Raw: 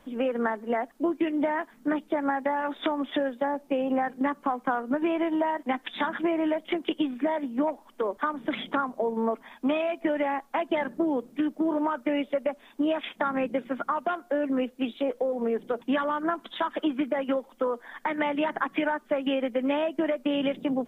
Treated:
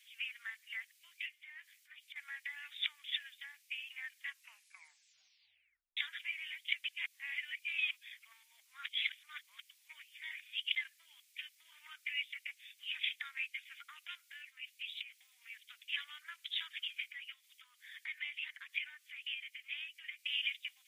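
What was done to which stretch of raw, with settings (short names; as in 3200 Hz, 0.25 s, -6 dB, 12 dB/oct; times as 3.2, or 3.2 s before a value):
1.26–2.16 compressor 5:1, threshold -34 dBFS
4.25 tape stop 1.72 s
6.84–10.76 reverse
14.42–15.18 compressor, threshold -28 dBFS
17.1–20.19 compressor 1.5:1, threshold -38 dBFS
whole clip: elliptic high-pass 2200 Hz, stop band 80 dB; gain +3 dB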